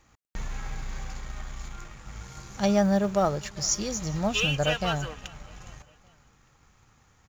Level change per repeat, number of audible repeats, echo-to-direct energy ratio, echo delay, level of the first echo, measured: -6.0 dB, 2, -23.0 dB, 0.405 s, -24.0 dB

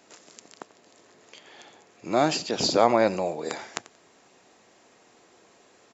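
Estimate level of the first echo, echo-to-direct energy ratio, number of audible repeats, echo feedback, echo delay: -19.0 dB, -19.0 dB, 2, 24%, 90 ms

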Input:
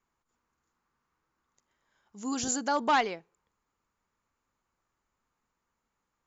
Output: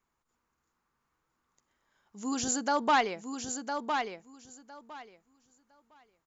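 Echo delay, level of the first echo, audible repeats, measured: 1.008 s, -6.0 dB, 2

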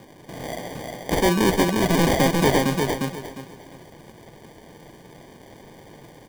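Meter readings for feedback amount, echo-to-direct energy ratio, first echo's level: 26%, -2.5 dB, -3.0 dB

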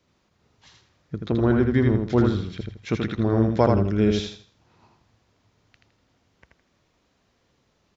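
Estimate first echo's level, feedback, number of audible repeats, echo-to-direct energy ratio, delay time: -4.0 dB, 29%, 3, -3.5 dB, 81 ms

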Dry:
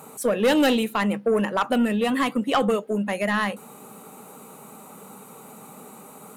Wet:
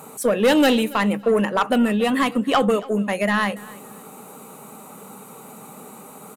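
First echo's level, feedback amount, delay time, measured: -21.0 dB, 22%, 0.28 s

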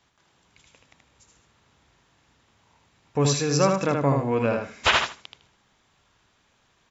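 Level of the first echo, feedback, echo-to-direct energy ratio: -4.0 dB, 19%, -4.0 dB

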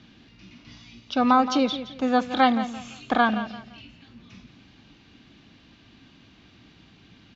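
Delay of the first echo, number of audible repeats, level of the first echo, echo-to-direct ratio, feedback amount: 0.171 s, 3, -12.5 dB, -12.0 dB, 29%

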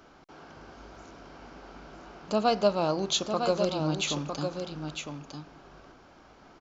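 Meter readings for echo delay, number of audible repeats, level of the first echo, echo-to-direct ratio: 0.955 s, 1, -6.5 dB, -6.5 dB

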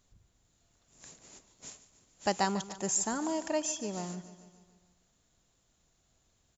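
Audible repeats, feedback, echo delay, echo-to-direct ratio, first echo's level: 5, 59%, 0.146 s, -13.0 dB, -15.0 dB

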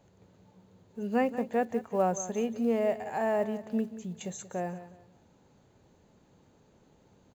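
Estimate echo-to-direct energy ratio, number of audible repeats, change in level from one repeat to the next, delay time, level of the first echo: -13.5 dB, 2, -11.0 dB, 0.181 s, -14.0 dB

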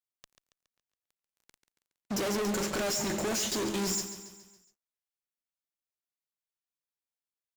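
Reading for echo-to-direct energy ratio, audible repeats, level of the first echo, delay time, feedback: -9.5 dB, 5, -11.0 dB, 0.139 s, 51%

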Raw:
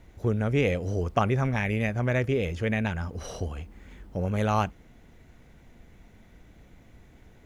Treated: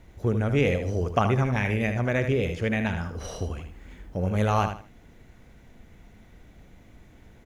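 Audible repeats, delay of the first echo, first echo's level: 3, 77 ms, -8.0 dB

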